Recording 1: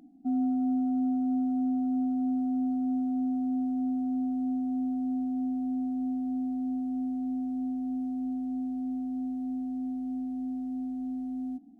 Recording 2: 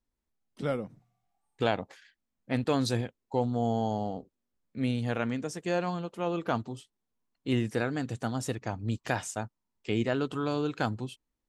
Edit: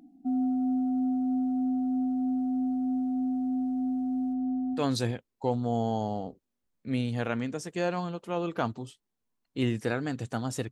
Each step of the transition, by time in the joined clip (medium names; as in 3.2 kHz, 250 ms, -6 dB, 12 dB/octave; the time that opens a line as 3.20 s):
recording 1
4.33–4.84 s: loudest bins only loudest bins 64
4.78 s: go over to recording 2 from 2.68 s, crossfade 0.12 s